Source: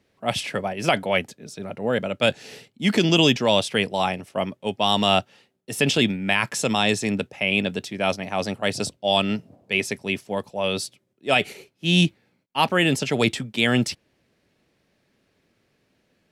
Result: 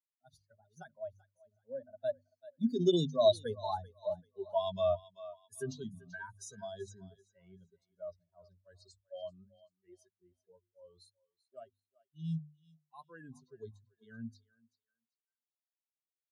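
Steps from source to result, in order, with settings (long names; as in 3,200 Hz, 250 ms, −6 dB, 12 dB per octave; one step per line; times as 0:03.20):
spectral dynamics exaggerated over time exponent 3
source passing by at 0:03.77, 28 m/s, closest 8.2 metres
harmonic and percussive parts rebalanced percussive −13 dB
mains-hum notches 50/100/150/200/250 Hz
on a send: feedback echo with a high-pass in the loop 386 ms, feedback 22%, high-pass 680 Hz, level −19 dB
on the sum: dynamic equaliser 970 Hz, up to −5 dB, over −58 dBFS, Q 1.8
in parallel at +1 dB: downward compressor, threshold −54 dBFS, peak gain reduction 20.5 dB
on the sum: EQ curve with evenly spaced ripples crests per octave 1.5, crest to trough 11 dB
automatic gain control gain up to 6.5 dB
Butterworth band-reject 2,400 Hz, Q 1.1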